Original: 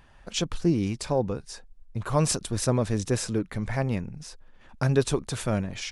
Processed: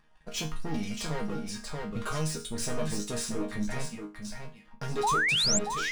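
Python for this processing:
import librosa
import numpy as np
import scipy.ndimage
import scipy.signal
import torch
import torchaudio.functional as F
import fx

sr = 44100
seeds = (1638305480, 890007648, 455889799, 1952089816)

p1 = fx.dereverb_blind(x, sr, rt60_s=0.89)
p2 = fx.tone_stack(p1, sr, knobs='5-5-5', at=(3.85, 4.25))
p3 = fx.leveller(p2, sr, passes=2)
p4 = 10.0 ** (-22.0 / 20.0) * np.tanh(p3 / 10.0 ** (-22.0 / 20.0))
p5 = fx.resonator_bank(p4, sr, root=51, chord='sus4', decay_s=0.31)
p6 = fx.spec_paint(p5, sr, seeds[0], shape='rise', start_s=5.03, length_s=0.56, low_hz=760.0, high_hz=7800.0, level_db=-35.0)
p7 = p6 + fx.echo_single(p6, sr, ms=631, db=-7.0, dry=0)
p8 = fx.band_squash(p7, sr, depth_pct=70, at=(0.74, 2.4))
y = p8 * librosa.db_to_amplitude(9.0)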